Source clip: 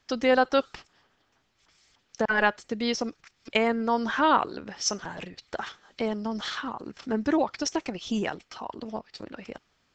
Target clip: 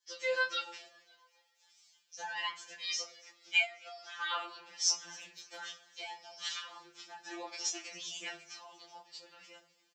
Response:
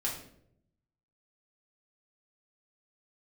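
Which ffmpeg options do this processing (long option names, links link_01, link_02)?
-filter_complex "[0:a]dynaudnorm=framelen=110:gausssize=3:maxgain=5dB,asplit=2[link_01][link_02];[1:a]atrim=start_sample=2205,lowshelf=frequency=370:gain=8[link_03];[link_02][link_03]afir=irnorm=-1:irlink=0,volume=-9dB[link_04];[link_01][link_04]amix=inputs=2:normalize=0,flanger=delay=19.5:depth=3.9:speed=1.3,aderivative,asplit=3[link_05][link_06][link_07];[link_05]afade=type=out:start_time=3.64:duration=0.02[link_08];[link_06]acompressor=threshold=-43dB:ratio=5,afade=type=in:start_time=3.64:duration=0.02,afade=type=out:start_time=4.2:duration=0.02[link_09];[link_07]afade=type=in:start_time=4.2:duration=0.02[link_10];[link_08][link_09][link_10]amix=inputs=3:normalize=0,asplit=5[link_11][link_12][link_13][link_14][link_15];[link_12]adelay=272,afreqshift=82,volume=-23.5dB[link_16];[link_13]adelay=544,afreqshift=164,volume=-28.1dB[link_17];[link_14]adelay=816,afreqshift=246,volume=-32.7dB[link_18];[link_15]adelay=1088,afreqshift=328,volume=-37.2dB[link_19];[link_11][link_16][link_17][link_18][link_19]amix=inputs=5:normalize=0,asettb=1/sr,asplit=3[link_20][link_21][link_22];[link_20]atrim=end=5.084[link_23];[link_21]atrim=start=5.08:end=5.59,asetpts=PTS-STARTPTS,afade=type=in:duration=0.004:curve=qsin,afade=type=out:start_time=0.506:duration=0.004:curve=qsin,asoftclip=type=hard:threshold=-35.5dB[link_24];[link_22]atrim=start=5.586[link_25];[link_23][link_24]acrossfade=duration=0.004:curve1=hsin:curve2=qsin[link_26];[link_26][link_25]acrossfade=duration=0.004:curve1=qsin:curve2=hsin,adynamicequalizer=threshold=0.00251:dfrequency=2400:dqfactor=2.8:tfrequency=2400:tqfactor=2.8:attack=5:release=100:ratio=0.375:range=3:mode=boostabove:tftype=bell,afftfilt=real='re*2.83*eq(mod(b,8),0)':imag='im*2.83*eq(mod(b,8),0)':win_size=2048:overlap=0.75"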